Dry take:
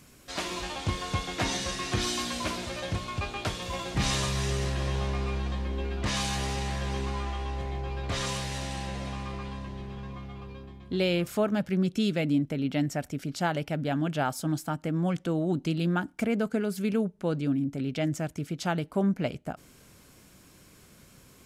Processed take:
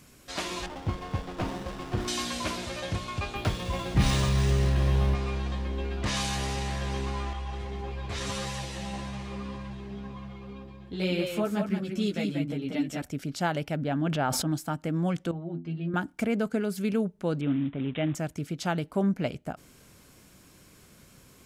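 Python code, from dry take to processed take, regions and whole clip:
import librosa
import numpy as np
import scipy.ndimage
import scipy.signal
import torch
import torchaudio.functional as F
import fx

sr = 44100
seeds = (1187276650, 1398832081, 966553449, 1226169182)

y = fx.chain(x, sr, fx.air_absorb(metres=230.0),
    fx.running_max(window=17), at=(0.66, 2.08))
y = fx.chain(y, sr, fx.low_shelf(hz=260.0, db=7.5),
    fx.resample_linear(factor=3), at=(3.35, 5.15))
y = fx.chain(y, sr, fx.echo_single(ms=185, db=-4.5),
    fx.ensemble(), at=(7.33, 13.02))
y = fx.chain(y, sr, fx.peak_eq(hz=12000.0, db=-11.5, octaves=2.2),
    fx.sustainer(db_per_s=23.0), at=(13.76, 14.52))
y = fx.chain(y, sr, fx.lowpass(hz=2400.0, slope=12),
    fx.stiff_resonator(f0_hz=81.0, decay_s=0.29, stiffness=0.008), at=(15.31, 15.94))
y = fx.chain(y, sr, fx.quant_companded(bits=6),
    fx.resample_bad(factor=6, down='none', up='filtered'), at=(17.41, 18.15))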